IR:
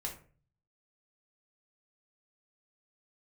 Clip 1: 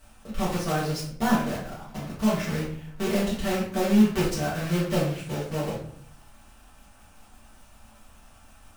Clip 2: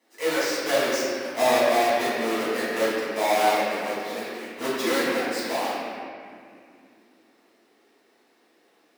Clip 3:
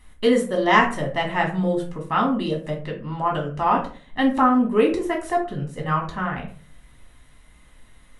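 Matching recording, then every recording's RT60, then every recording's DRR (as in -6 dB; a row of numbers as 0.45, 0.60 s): 3; 0.60, 2.3, 0.40 s; -8.0, -12.5, -0.5 dB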